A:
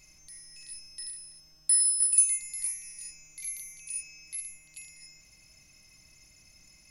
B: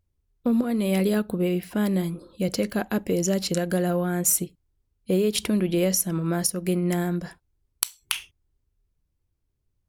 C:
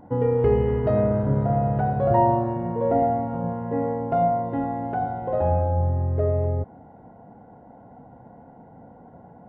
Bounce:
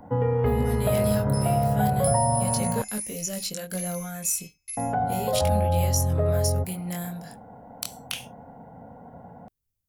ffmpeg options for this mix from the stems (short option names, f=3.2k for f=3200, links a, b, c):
-filter_complex "[0:a]agate=range=-28dB:threshold=-47dB:ratio=16:detection=peak,acompressor=threshold=-34dB:ratio=3,adelay=350,volume=2dB[a];[1:a]aemphasis=mode=production:type=75kf,acrossover=split=6600[b][c];[c]acompressor=threshold=-21dB:ratio=4:attack=1:release=60[d];[b][d]amix=inputs=2:normalize=0,flanger=delay=18.5:depth=6.7:speed=0.33,volume=-6dB[e];[2:a]bandreject=f=50:t=h:w=6,bandreject=f=100:t=h:w=6,bandreject=f=150:t=h:w=6,bandreject=f=200:t=h:w=6,bandreject=f=250:t=h:w=6,bandreject=f=300:t=h:w=6,bandreject=f=350:t=h:w=6,acrossover=split=180|620[f][g][h];[f]acompressor=threshold=-26dB:ratio=4[i];[g]acompressor=threshold=-32dB:ratio=4[j];[h]acompressor=threshold=-29dB:ratio=4[k];[i][j][k]amix=inputs=3:normalize=0,volume=3dB,asplit=3[l][m][n];[l]atrim=end=2.82,asetpts=PTS-STARTPTS,afade=t=out:st=2.816:d=0.004:c=hsin[o];[m]atrim=start=2.82:end=4.77,asetpts=PTS-STARTPTS,volume=0[p];[n]atrim=start=4.77,asetpts=PTS-STARTPTS,afade=t=in:d=0.004:c=hsin[q];[o][p][q]concat=n=3:v=0:a=1[r];[a][e][r]amix=inputs=3:normalize=0,equalizer=f=350:w=6:g=-13.5"